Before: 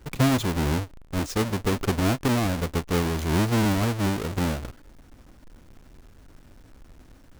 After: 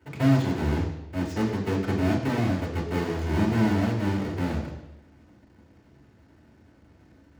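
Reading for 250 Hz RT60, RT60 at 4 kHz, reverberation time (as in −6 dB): 0.85 s, 0.90 s, 0.90 s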